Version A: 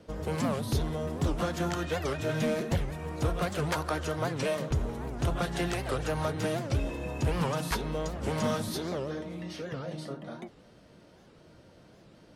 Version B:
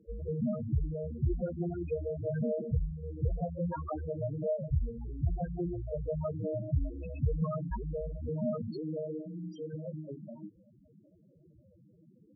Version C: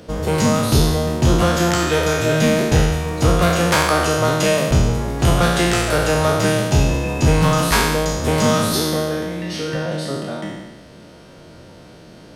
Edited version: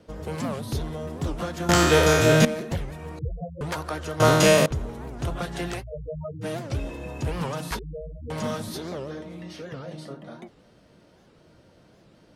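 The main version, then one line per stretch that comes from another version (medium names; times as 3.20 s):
A
1.69–2.45 s: from C
3.19–3.61 s: from B
4.20–4.66 s: from C
5.81–6.44 s: from B, crossfade 0.06 s
7.79–8.30 s: from B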